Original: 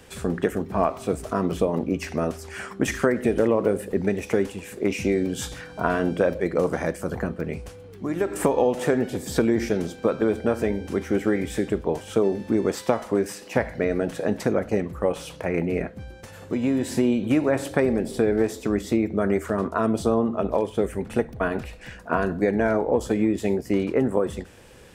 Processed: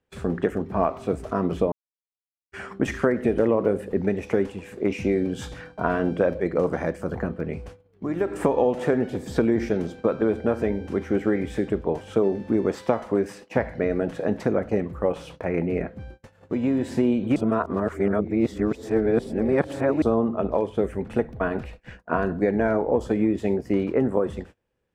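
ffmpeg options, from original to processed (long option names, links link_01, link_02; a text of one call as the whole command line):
ffmpeg -i in.wav -filter_complex "[0:a]asplit=5[link_01][link_02][link_03][link_04][link_05];[link_01]atrim=end=1.72,asetpts=PTS-STARTPTS,afade=type=out:start_time=1.716:duration=0.004:curve=hsin[link_06];[link_02]atrim=start=1.72:end=2.52,asetpts=PTS-STARTPTS,volume=0[link_07];[link_03]atrim=start=2.52:end=17.362,asetpts=PTS-STARTPTS,afade=type=in:duration=0.004:curve=hsin[link_08];[link_04]atrim=start=17.358:end=20.022,asetpts=PTS-STARTPTS,areverse[link_09];[link_05]atrim=start=20.018[link_10];[link_06][link_07][link_08]concat=n=3:v=0:a=1[link_11];[link_11][link_09]acrossfade=duration=0.004:curve1=hsin:curve2=hsin[link_12];[link_12][link_10]acrossfade=duration=0.004:curve1=hsin:curve2=hsin,agate=range=-28dB:threshold=-40dB:ratio=16:detection=peak,lowpass=frequency=2100:poles=1" out.wav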